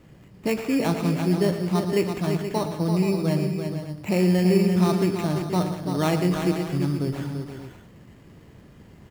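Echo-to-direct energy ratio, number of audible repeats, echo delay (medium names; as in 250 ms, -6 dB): -3.5 dB, 5, 115 ms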